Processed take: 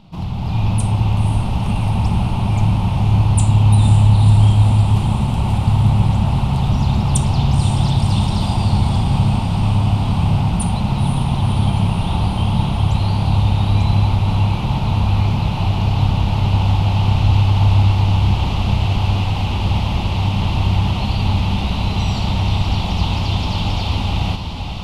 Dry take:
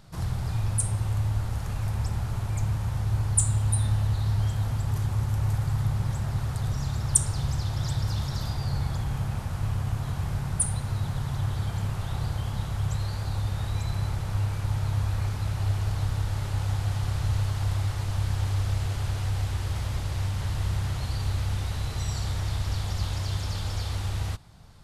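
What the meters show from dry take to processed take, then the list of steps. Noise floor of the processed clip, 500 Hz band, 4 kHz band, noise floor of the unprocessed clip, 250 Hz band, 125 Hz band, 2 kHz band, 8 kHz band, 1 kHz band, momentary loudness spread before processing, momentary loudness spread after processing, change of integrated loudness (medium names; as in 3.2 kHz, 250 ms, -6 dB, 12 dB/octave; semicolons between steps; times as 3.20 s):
-21 dBFS, +12.5 dB, +13.5 dB, -33 dBFS, +18.0 dB, +12.0 dB, +10.5 dB, -1.5 dB, +16.0 dB, 5 LU, 6 LU, +12.0 dB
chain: FFT filter 130 Hz 0 dB, 200 Hz +11 dB, 490 Hz -2 dB, 890 Hz +7 dB, 1.7 kHz -12 dB, 2.7 kHz +8 dB, 7.7 kHz -14 dB; level rider gain up to 7 dB; echo that smears into a reverb 518 ms, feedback 75%, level -8.5 dB; trim +3.5 dB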